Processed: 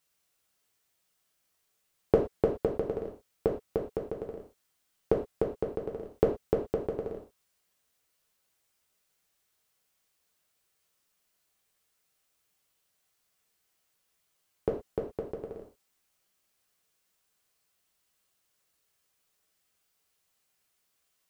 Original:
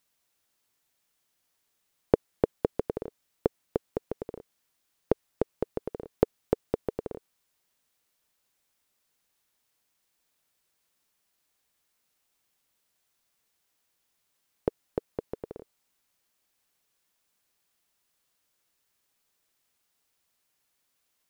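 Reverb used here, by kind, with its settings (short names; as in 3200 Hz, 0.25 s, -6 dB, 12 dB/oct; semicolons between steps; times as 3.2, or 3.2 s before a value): non-linear reverb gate 0.14 s falling, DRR -1 dB; gain -3.5 dB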